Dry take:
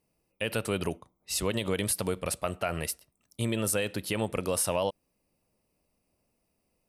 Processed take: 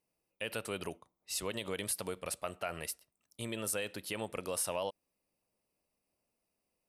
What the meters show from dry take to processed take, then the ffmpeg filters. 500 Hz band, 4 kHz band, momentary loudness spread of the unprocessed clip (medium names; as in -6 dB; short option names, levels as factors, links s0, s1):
-8.0 dB, -6.0 dB, 8 LU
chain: -af "lowshelf=f=270:g=-9,volume=0.501"